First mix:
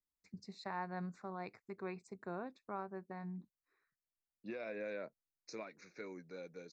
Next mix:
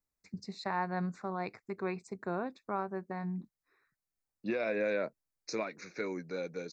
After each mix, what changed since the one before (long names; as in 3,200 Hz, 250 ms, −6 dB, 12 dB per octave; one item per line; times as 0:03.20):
first voice +8.0 dB
second voice +11.0 dB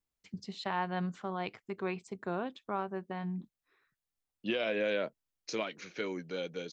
master: remove Butterworth band-reject 3,100 Hz, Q 2.1